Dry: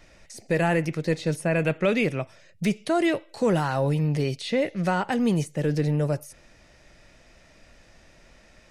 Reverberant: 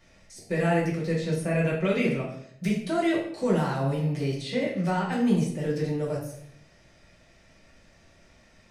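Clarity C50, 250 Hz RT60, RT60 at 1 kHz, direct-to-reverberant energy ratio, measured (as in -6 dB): 5.0 dB, 0.75 s, 0.60 s, -4.0 dB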